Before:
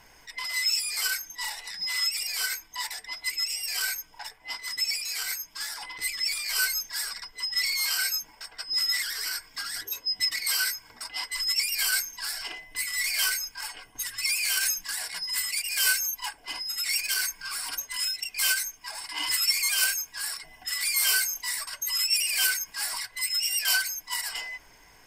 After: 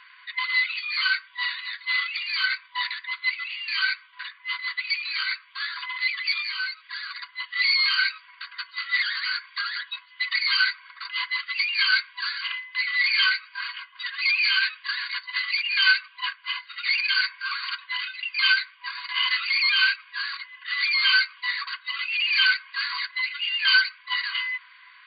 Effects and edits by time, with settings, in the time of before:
0:06.42–0:07.30: downward compressor 2 to 1, threshold −37 dBFS
whole clip: brick-wall band-pass 980–4,700 Hz; level +8.5 dB

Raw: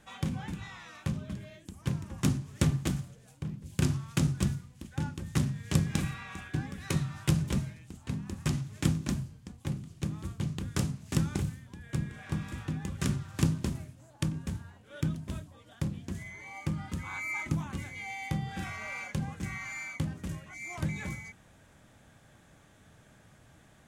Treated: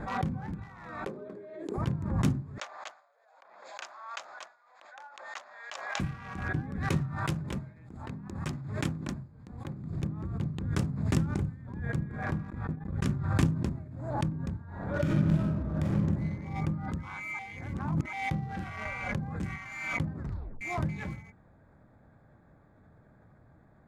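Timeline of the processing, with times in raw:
0:01.06–0:01.78: high-pass with resonance 410 Hz, resonance Q 4.8
0:02.58–0:06.00: Chebyshev band-pass filter 630–6,900 Hz, order 4
0:07.15–0:09.84: low-shelf EQ 300 Hz −8 dB
0:12.50–0:13.17: noise gate −34 dBFS, range −24 dB
0:14.67–0:15.94: thrown reverb, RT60 2.3 s, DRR −8 dB
0:17.39–0:18.13: reverse
0:18.85–0:19.56: multiband upward and downward compressor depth 100%
0:20.16: tape stop 0.45 s
whole clip: adaptive Wiener filter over 15 samples; high-shelf EQ 4,200 Hz −10 dB; background raised ahead of every attack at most 50 dB per second

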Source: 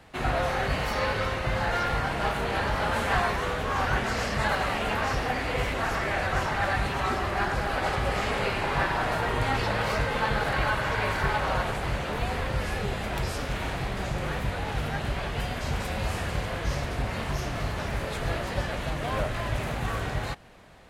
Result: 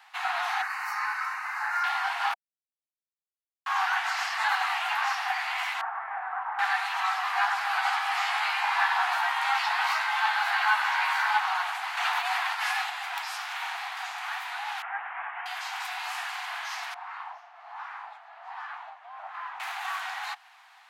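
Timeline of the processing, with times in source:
0:00.62–0:01.84: phaser with its sweep stopped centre 1,400 Hz, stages 4
0:02.34–0:03.66: silence
0:05.81–0:06.59: Bessel low-pass filter 1,000 Hz, order 4
0:07.24–0:11.39: double-tracking delay 14 ms −4 dB
0:11.97–0:12.90: envelope flattener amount 100%
0:14.82–0:15.46: inverse Chebyshev low-pass filter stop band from 4,200 Hz
0:16.94–0:19.60: LFO wah 1.3 Hz 390–1,200 Hz, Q 2.2
whole clip: Butterworth high-pass 740 Hz 96 dB per octave; parametric band 9,100 Hz −5.5 dB 0.93 octaves; level +2 dB

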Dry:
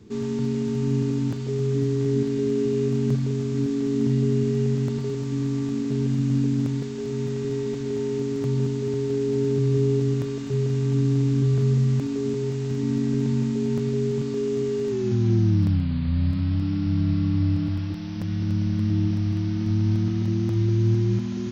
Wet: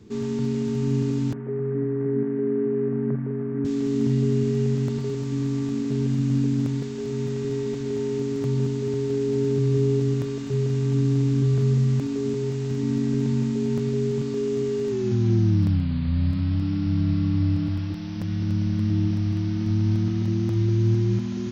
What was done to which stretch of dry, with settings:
0:01.33–0:03.65: elliptic band-pass filter 150–1,800 Hz

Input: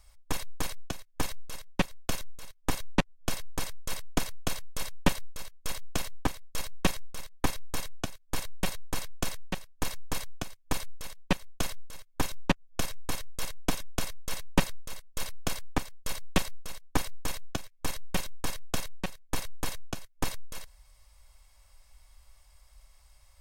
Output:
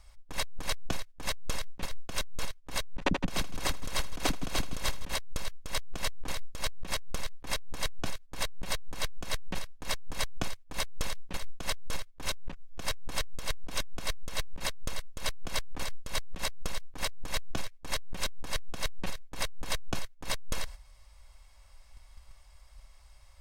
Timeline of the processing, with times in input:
0:02.93–0:05.13: echo with a time of its own for lows and highs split 300 Hz, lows 127 ms, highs 81 ms, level −12 dB
whole clip: noise gate −49 dBFS, range −9 dB; high-shelf EQ 9,000 Hz −11.5 dB; compressor whose output falls as the input rises −36 dBFS, ratio −1; level +6.5 dB

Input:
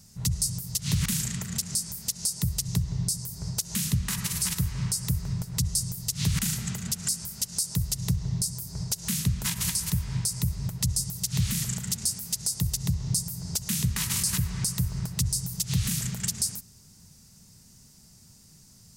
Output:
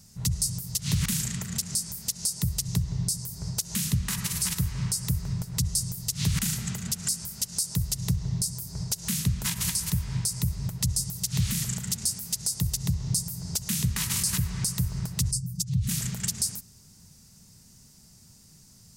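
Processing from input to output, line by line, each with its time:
0:15.31–0:15.89: expanding power law on the bin magnitudes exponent 1.7

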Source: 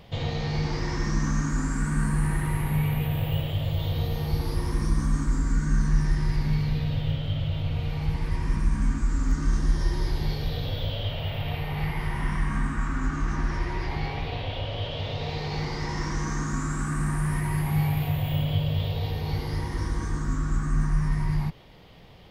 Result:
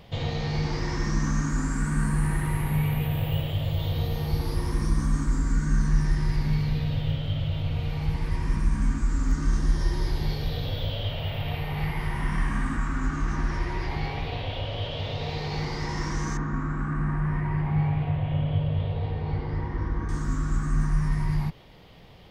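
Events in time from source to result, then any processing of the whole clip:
0:12.28–0:12.77: flutter between parallel walls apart 9.9 metres, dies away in 0.64 s
0:16.37–0:20.09: low-pass filter 1,900 Hz

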